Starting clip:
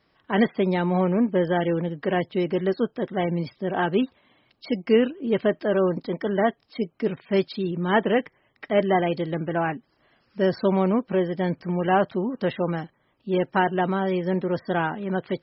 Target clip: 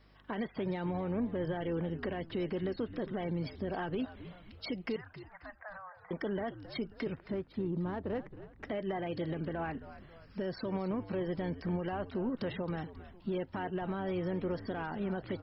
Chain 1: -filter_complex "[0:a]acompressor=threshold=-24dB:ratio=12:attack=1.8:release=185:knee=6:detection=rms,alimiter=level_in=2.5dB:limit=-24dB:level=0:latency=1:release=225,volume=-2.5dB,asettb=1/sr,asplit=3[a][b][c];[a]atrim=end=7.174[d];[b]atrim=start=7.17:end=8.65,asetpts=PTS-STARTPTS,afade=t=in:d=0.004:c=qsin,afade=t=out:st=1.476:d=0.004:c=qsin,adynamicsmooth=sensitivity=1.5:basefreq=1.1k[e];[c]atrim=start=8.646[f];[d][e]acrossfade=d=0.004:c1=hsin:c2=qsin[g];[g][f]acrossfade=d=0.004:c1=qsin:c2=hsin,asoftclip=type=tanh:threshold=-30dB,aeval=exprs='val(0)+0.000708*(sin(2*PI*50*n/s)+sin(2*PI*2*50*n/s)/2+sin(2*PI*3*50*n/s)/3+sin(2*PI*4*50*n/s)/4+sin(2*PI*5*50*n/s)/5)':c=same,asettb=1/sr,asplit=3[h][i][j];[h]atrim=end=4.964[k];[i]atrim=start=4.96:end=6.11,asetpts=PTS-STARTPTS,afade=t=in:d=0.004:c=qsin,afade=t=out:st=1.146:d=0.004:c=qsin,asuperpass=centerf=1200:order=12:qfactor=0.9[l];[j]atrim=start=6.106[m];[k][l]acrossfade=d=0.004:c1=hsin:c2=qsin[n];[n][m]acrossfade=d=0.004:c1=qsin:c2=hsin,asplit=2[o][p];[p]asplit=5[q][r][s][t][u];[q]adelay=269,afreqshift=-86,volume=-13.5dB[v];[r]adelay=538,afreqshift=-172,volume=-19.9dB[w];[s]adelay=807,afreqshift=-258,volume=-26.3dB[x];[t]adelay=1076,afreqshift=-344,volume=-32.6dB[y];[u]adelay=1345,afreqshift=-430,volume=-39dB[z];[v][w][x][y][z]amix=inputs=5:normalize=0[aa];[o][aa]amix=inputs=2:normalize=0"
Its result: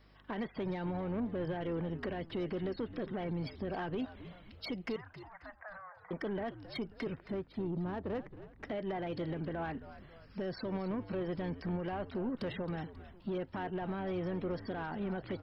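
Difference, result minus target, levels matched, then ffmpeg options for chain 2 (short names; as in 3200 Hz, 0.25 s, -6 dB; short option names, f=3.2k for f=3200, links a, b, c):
soft clip: distortion +15 dB
-filter_complex "[0:a]acompressor=threshold=-24dB:ratio=12:attack=1.8:release=185:knee=6:detection=rms,alimiter=level_in=2.5dB:limit=-24dB:level=0:latency=1:release=225,volume=-2.5dB,asettb=1/sr,asplit=3[a][b][c];[a]atrim=end=7.174[d];[b]atrim=start=7.17:end=8.65,asetpts=PTS-STARTPTS,afade=t=in:d=0.004:c=qsin,afade=t=out:st=1.476:d=0.004:c=qsin,adynamicsmooth=sensitivity=1.5:basefreq=1.1k[e];[c]atrim=start=8.646[f];[d][e]acrossfade=d=0.004:c1=hsin:c2=qsin[g];[g][f]acrossfade=d=0.004:c1=qsin:c2=hsin,asoftclip=type=tanh:threshold=-21dB,aeval=exprs='val(0)+0.000708*(sin(2*PI*50*n/s)+sin(2*PI*2*50*n/s)/2+sin(2*PI*3*50*n/s)/3+sin(2*PI*4*50*n/s)/4+sin(2*PI*5*50*n/s)/5)':c=same,asettb=1/sr,asplit=3[h][i][j];[h]atrim=end=4.964[k];[i]atrim=start=4.96:end=6.11,asetpts=PTS-STARTPTS,afade=t=in:d=0.004:c=qsin,afade=t=out:st=1.146:d=0.004:c=qsin,asuperpass=centerf=1200:order=12:qfactor=0.9[l];[j]atrim=start=6.106[m];[k][l]acrossfade=d=0.004:c1=hsin:c2=qsin[n];[n][m]acrossfade=d=0.004:c1=qsin:c2=hsin,asplit=2[o][p];[p]asplit=5[q][r][s][t][u];[q]adelay=269,afreqshift=-86,volume=-13.5dB[v];[r]adelay=538,afreqshift=-172,volume=-19.9dB[w];[s]adelay=807,afreqshift=-258,volume=-26.3dB[x];[t]adelay=1076,afreqshift=-344,volume=-32.6dB[y];[u]adelay=1345,afreqshift=-430,volume=-39dB[z];[v][w][x][y][z]amix=inputs=5:normalize=0[aa];[o][aa]amix=inputs=2:normalize=0"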